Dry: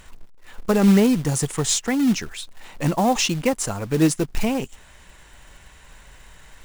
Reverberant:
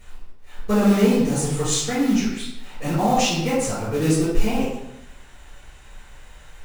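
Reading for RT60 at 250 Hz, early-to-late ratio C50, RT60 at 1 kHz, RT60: 0.90 s, 1.0 dB, 0.85 s, 0.85 s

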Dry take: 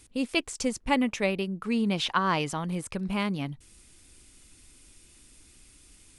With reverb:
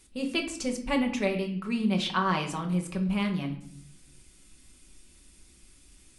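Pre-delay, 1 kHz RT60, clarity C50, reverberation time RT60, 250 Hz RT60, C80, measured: 5 ms, 0.55 s, 10.0 dB, 0.65 s, 0.95 s, 13.5 dB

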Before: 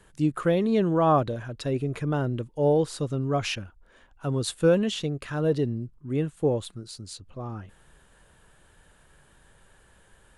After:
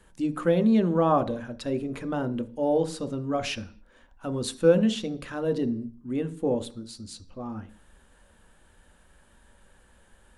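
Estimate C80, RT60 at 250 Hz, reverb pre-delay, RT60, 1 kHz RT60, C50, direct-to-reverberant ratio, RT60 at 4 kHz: 21.5 dB, 0.55 s, 3 ms, 0.45 s, 0.45 s, 16.5 dB, 9.0 dB, can't be measured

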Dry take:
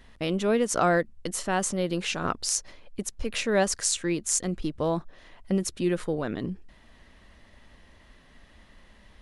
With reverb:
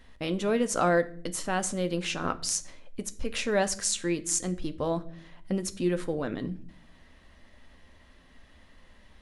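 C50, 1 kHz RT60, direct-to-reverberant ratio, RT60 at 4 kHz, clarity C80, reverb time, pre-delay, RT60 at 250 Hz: 17.5 dB, 0.45 s, 9.0 dB, 0.40 s, 22.0 dB, 0.55 s, 4 ms, 1.0 s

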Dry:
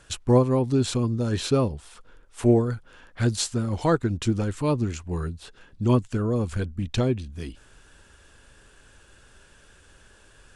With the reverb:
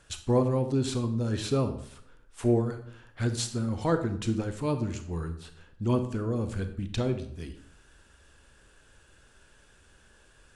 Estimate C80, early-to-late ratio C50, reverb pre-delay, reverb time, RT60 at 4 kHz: 13.5 dB, 10.5 dB, 28 ms, 0.65 s, 0.50 s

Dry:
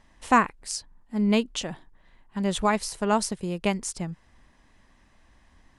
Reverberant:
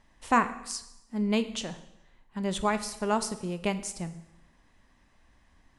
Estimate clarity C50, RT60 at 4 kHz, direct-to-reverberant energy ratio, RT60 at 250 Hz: 13.5 dB, 0.85 s, 10.5 dB, 0.90 s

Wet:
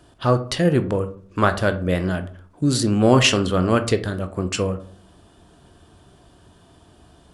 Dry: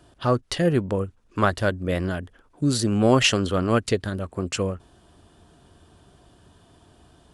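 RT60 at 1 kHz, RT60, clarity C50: 0.45 s, 0.50 s, 14.0 dB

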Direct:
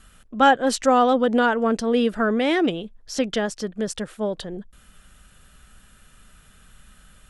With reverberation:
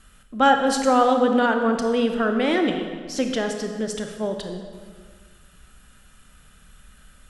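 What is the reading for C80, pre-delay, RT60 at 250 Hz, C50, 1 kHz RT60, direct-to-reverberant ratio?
7.0 dB, 24 ms, 1.8 s, 6.0 dB, 1.7 s, 4.5 dB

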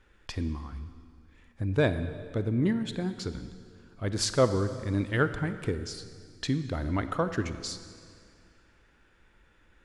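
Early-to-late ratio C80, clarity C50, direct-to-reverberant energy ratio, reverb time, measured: 12.0 dB, 11.0 dB, 10.5 dB, 2.1 s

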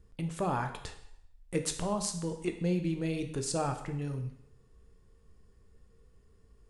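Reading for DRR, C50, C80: 5.5 dB, 9.0 dB, 12.0 dB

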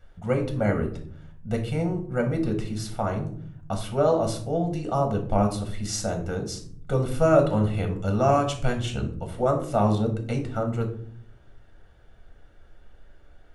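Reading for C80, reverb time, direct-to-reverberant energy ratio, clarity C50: 14.0 dB, 0.55 s, 3.0 dB, 9.5 dB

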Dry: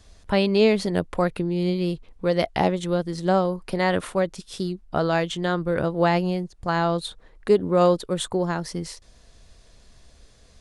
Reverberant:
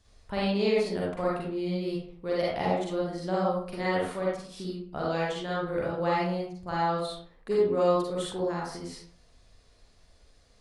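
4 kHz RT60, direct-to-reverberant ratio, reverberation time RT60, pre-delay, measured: 0.35 s, −6.0 dB, 0.55 s, 40 ms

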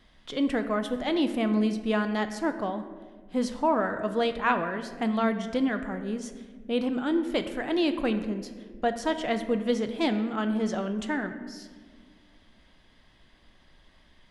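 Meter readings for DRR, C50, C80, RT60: 8.0 dB, 10.0 dB, 11.5 dB, 1.6 s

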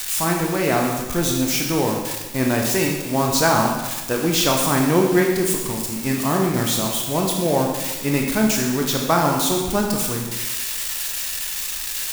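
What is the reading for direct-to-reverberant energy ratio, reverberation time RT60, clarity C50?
0.0 dB, 1.2 s, 3.0 dB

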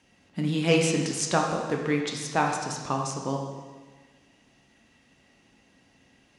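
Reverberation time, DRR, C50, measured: 1.4 s, 0.5 dB, 3.5 dB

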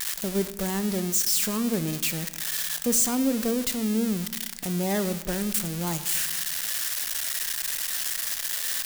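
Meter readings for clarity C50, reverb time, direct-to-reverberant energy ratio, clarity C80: 13.5 dB, 1.1 s, 11.5 dB, 15.5 dB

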